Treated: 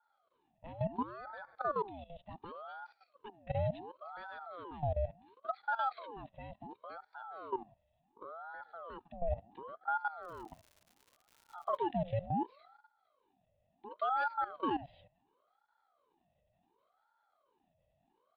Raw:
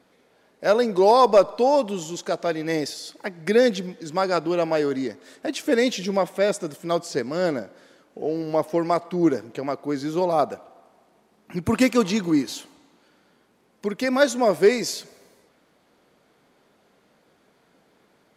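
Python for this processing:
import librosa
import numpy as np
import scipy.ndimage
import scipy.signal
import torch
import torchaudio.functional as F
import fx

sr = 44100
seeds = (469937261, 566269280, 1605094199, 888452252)

y = fx.formant_cascade(x, sr, vowel='i')
y = fx.level_steps(y, sr, step_db=15)
y = fx.dmg_crackle(y, sr, seeds[0], per_s=220.0, level_db=-49.0, at=(10.22, 11.75), fade=0.02)
y = fx.ring_lfo(y, sr, carrier_hz=740.0, swing_pct=55, hz=0.7)
y = F.gain(torch.from_numpy(y), 1.0).numpy()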